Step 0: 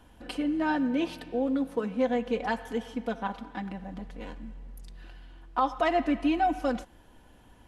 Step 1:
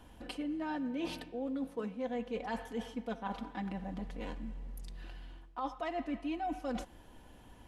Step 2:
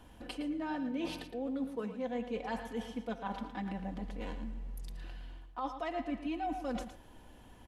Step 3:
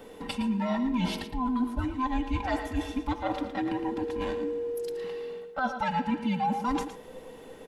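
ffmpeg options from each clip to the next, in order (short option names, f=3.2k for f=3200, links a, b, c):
-af "equalizer=f=1.5k:w=4.3:g=-3,areverse,acompressor=threshold=-35dB:ratio=6,areverse"
-af "aecho=1:1:113:0.299"
-af "afftfilt=real='real(if(between(b,1,1008),(2*floor((b-1)/24)+1)*24-b,b),0)':imag='imag(if(between(b,1,1008),(2*floor((b-1)/24)+1)*24-b,b),0)*if(between(b,1,1008),-1,1)':win_size=2048:overlap=0.75,volume=8.5dB"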